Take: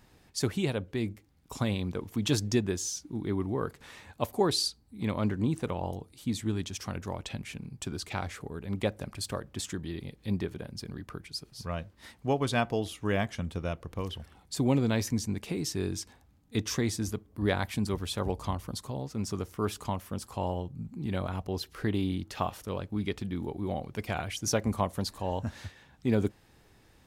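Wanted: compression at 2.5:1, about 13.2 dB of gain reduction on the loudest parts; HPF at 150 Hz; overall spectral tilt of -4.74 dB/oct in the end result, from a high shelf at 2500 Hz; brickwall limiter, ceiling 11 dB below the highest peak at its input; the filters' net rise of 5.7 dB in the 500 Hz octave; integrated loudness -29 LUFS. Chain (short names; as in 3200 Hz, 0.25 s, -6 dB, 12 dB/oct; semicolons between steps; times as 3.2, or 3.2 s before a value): HPF 150 Hz; bell 500 Hz +7.5 dB; high shelf 2500 Hz -4.5 dB; compressor 2.5:1, threshold -39 dBFS; gain +14.5 dB; limiter -16.5 dBFS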